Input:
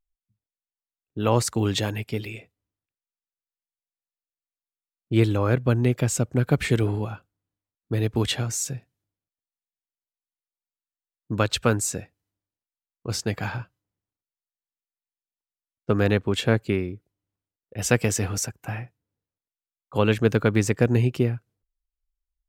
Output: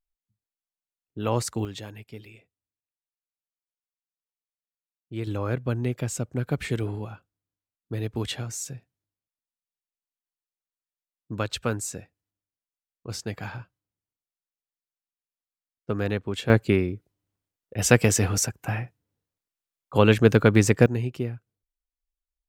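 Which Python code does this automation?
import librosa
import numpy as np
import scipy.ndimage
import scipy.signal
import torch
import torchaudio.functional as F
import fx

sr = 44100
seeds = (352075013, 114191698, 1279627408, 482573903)

y = fx.gain(x, sr, db=fx.steps((0.0, -4.5), (1.65, -13.0), (5.27, -6.0), (16.5, 3.0), (20.86, -7.0)))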